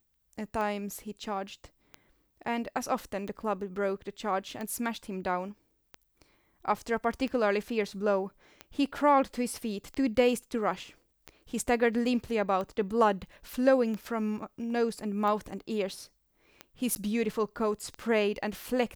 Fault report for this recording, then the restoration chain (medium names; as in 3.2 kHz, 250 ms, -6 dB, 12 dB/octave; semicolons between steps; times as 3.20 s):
tick 45 rpm -24 dBFS
16.95–16.96 s: dropout 9.9 ms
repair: de-click; interpolate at 16.95 s, 9.9 ms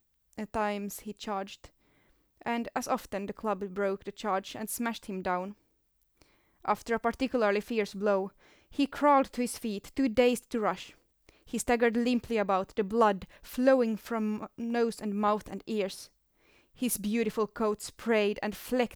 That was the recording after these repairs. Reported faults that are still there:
nothing left